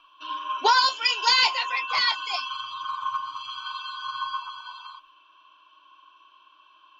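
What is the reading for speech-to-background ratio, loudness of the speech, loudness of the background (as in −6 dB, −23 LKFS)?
10.0 dB, −21.5 LKFS, −31.5 LKFS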